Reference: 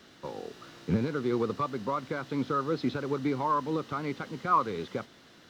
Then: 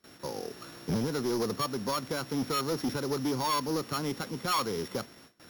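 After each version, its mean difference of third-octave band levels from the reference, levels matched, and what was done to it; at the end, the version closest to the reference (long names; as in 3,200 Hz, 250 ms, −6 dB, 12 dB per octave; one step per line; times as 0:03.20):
7.0 dB: samples sorted by size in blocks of 8 samples
noise gate with hold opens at −45 dBFS
soft clipping −28 dBFS, distortion −9 dB
level +3 dB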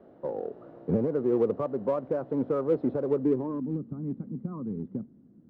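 11.0 dB: low-shelf EQ 110 Hz −6 dB
low-pass filter sweep 600 Hz → 220 Hz, 0:03.10–0:03.73
in parallel at −12 dB: hard clipping −30.5 dBFS, distortion −6 dB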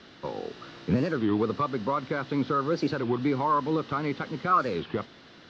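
3.5 dB: low-pass filter 5,200 Hz 24 dB per octave
in parallel at −3 dB: brickwall limiter −24.5 dBFS, peak gain reduction 11.5 dB
on the sum: wow of a warped record 33 1/3 rpm, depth 250 cents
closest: third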